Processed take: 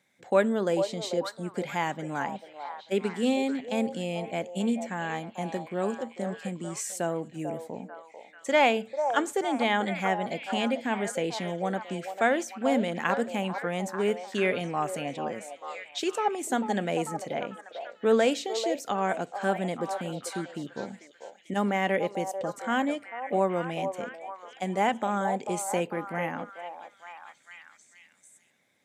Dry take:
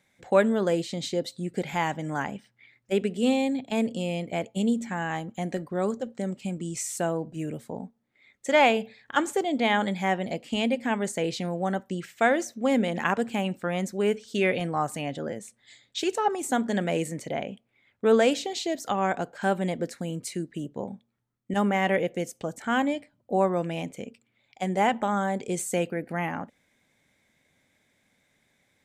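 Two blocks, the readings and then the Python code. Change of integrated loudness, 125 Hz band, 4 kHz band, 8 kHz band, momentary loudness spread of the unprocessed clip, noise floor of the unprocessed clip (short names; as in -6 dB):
-2.0 dB, -4.0 dB, -2.0 dB, -2.0 dB, 11 LU, -71 dBFS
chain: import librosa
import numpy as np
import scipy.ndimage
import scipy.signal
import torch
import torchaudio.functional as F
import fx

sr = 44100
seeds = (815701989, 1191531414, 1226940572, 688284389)

y = scipy.signal.sosfilt(scipy.signal.butter(2, 150.0, 'highpass', fs=sr, output='sos'), x)
y = fx.echo_stepped(y, sr, ms=443, hz=690.0, octaves=0.7, feedback_pct=70, wet_db=-5.0)
y = y * librosa.db_to_amplitude(-2.0)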